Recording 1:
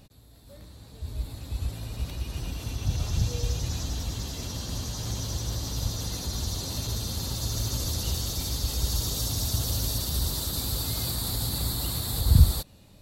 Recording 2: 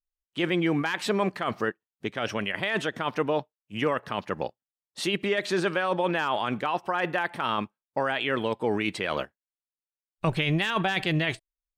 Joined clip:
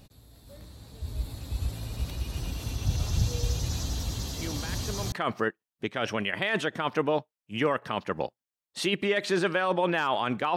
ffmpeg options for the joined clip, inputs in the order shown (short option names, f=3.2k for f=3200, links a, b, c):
-filter_complex "[1:a]asplit=2[a][b];[0:a]apad=whole_dur=10.56,atrim=end=10.56,atrim=end=5.122[c];[b]atrim=start=1.328:end=6.77[d];[a]atrim=start=0.62:end=1.33,asetpts=PTS-STARTPTS,volume=-12.5dB,afade=t=in:d=0.004:c=hsin,afade=t=out:st=0.706:d=0.004:c=hsin,adelay=194481S[e];[c][d]acrossfade=d=0.004:c1=hsin:c2=hsin[f];[f][e]amix=inputs=2:normalize=0"